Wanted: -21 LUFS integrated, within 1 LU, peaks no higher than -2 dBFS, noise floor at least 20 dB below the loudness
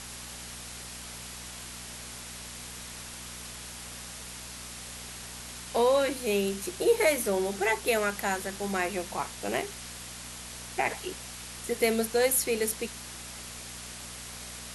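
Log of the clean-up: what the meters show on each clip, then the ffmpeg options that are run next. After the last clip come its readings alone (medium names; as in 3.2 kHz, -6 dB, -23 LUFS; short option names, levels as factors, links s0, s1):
hum 60 Hz; highest harmonic 240 Hz; hum level -47 dBFS; noise floor -43 dBFS; noise floor target -52 dBFS; loudness -31.5 LUFS; peak level -11.0 dBFS; loudness target -21.0 LUFS
-> -af "bandreject=f=60:t=h:w=4,bandreject=f=120:t=h:w=4,bandreject=f=180:t=h:w=4,bandreject=f=240:t=h:w=4"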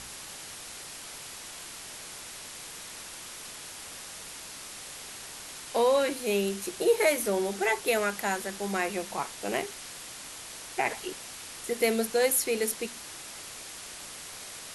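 hum not found; noise floor -43 dBFS; noise floor target -52 dBFS
-> -af "afftdn=nr=9:nf=-43"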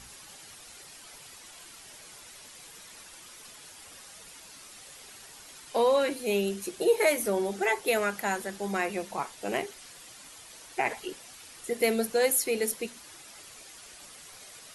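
noise floor -50 dBFS; loudness -28.5 LUFS; peak level -11.5 dBFS; loudness target -21.0 LUFS
-> -af "volume=2.37"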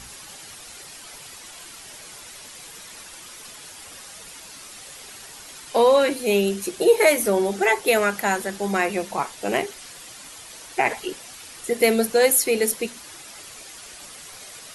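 loudness -21.0 LUFS; peak level -4.0 dBFS; noise floor -42 dBFS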